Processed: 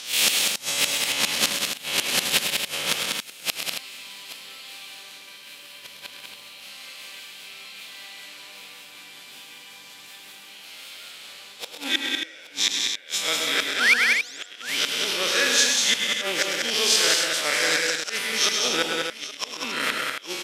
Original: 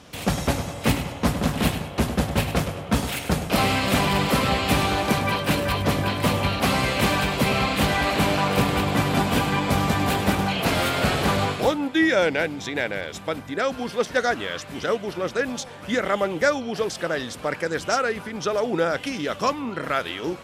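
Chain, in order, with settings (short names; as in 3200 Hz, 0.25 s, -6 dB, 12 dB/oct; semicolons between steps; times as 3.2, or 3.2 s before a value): time blur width 92 ms; notch 690 Hz, Q 19; painted sound rise, 13.78–14.19, 1200–8000 Hz -29 dBFS; weighting filter D; reverse; upward compressor, threshold -34 dBFS; reverse; RIAA curve recording; flipped gate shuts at -9 dBFS, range -31 dB; on a send: tapped delay 0.104/0.129/0.194/0.237/0.275/0.823 s -7.5/-9/-4/-13/-7.5/-15.5 dB; on the sum: gain +1.5 dB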